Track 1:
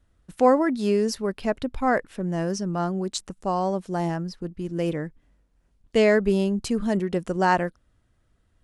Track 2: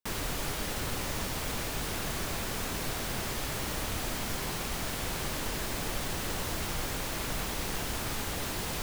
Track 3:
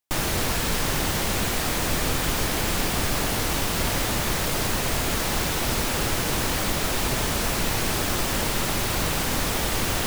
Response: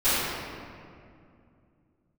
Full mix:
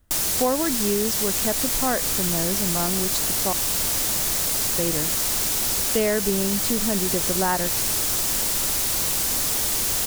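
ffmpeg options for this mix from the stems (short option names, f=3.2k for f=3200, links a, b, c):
-filter_complex "[0:a]volume=3dB,asplit=3[a][b][c];[a]atrim=end=3.53,asetpts=PTS-STARTPTS,afade=t=out:st=3.526:d=0.004:c=hsin[d];[b]atrim=start=3.53:end=4.78,asetpts=PTS-STARTPTS,volume=0[e];[c]atrim=start=4.78,asetpts=PTS-STARTPTS,afade=t=in:d=0.004:c=hsin[f];[d][e][f]concat=n=3:v=0:a=1[g];[1:a]adelay=1350,volume=-3dB[h];[2:a]bass=f=250:g=-3,treble=f=4k:g=15,volume=-4.5dB[i];[g][h][i]amix=inputs=3:normalize=0,acompressor=threshold=-20dB:ratio=3"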